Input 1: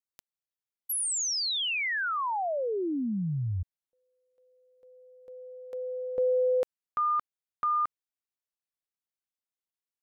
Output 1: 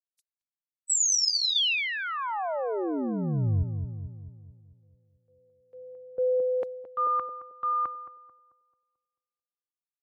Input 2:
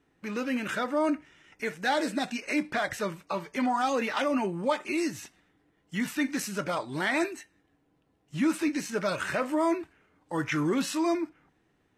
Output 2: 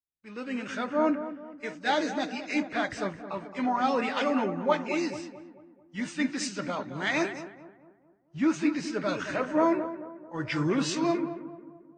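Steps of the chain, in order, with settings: nonlinear frequency compression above 3600 Hz 1.5:1; darkening echo 0.22 s, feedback 71%, low-pass 1700 Hz, level -7 dB; three-band expander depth 100%; gain -1 dB

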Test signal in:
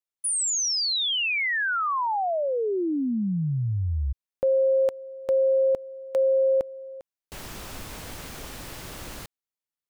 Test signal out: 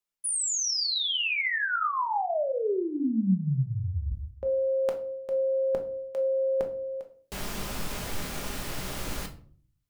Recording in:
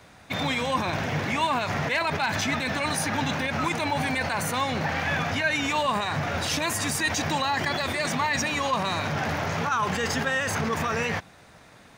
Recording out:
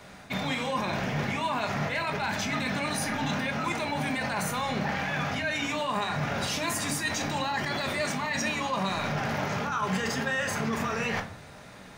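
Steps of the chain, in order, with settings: reverse; compressor 10:1, threshold -30 dBFS; reverse; shoebox room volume 390 m³, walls furnished, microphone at 1.3 m; gain +2 dB

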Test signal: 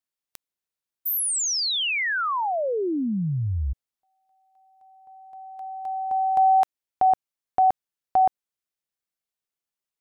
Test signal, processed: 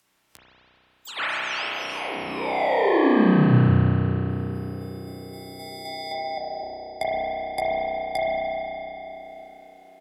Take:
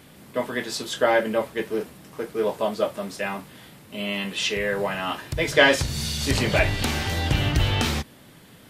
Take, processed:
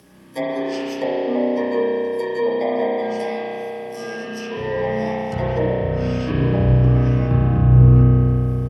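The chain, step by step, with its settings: FFT order left unsorted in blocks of 32 samples; treble ducked by the level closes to 350 Hz, closed at -16.5 dBFS; de-hum 106.6 Hz, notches 30; spectral noise reduction 7 dB; high shelf 6400 Hz -6 dB; upward compressor, threshold -48 dBFS; frequency shift +28 Hz; doubler 15 ms -8 dB; on a send: narrowing echo 0.406 s, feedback 84%, band-pass 400 Hz, level -17 dB; on the sum: spring tank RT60 3.5 s, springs 32 ms, chirp 50 ms, DRR -7.5 dB

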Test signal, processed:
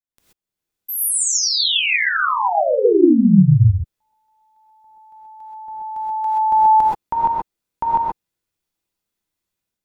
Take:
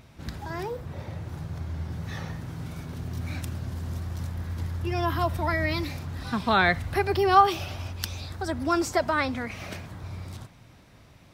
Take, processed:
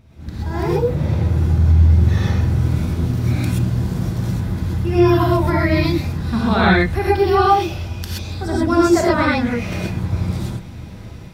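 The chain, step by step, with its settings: low shelf 320 Hz +11.5 dB; AGC gain up to 12.5 dB; non-linear reverb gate 0.15 s rising, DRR -5.5 dB; gain -7.5 dB

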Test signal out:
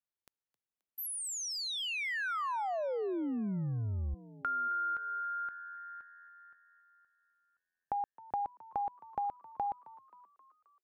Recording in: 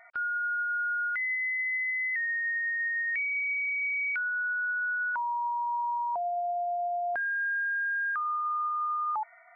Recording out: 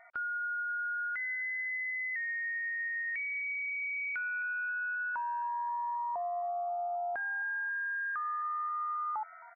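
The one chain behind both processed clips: high shelf 2200 Hz -9 dB; compressor, threshold -33 dBFS; frequency-shifting echo 0.265 s, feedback 56%, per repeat +86 Hz, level -19.5 dB

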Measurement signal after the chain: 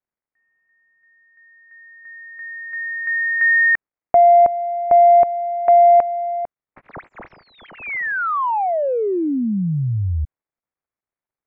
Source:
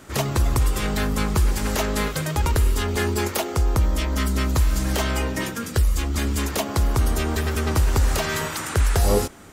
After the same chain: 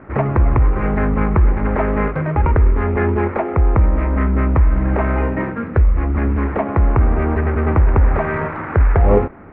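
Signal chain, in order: median filter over 15 samples; Chebyshev low-pass 2300 Hz, order 4; gain +7.5 dB

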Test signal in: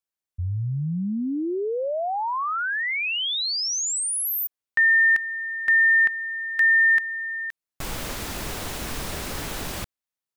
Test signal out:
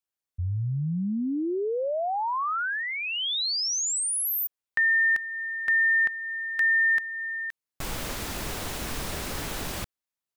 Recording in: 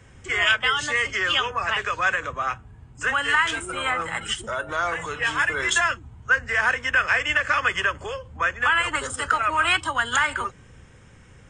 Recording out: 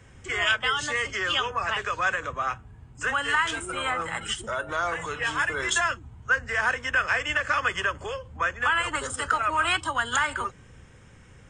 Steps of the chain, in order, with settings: dynamic EQ 2200 Hz, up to -4 dB, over -30 dBFS, Q 1.4; gain -1.5 dB

